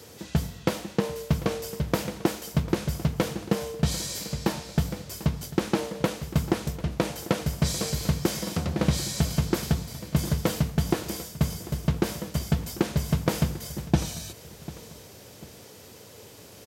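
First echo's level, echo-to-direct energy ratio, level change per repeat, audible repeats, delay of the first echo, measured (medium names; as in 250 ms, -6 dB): -17.0 dB, -16.5 dB, -7.5 dB, 2, 745 ms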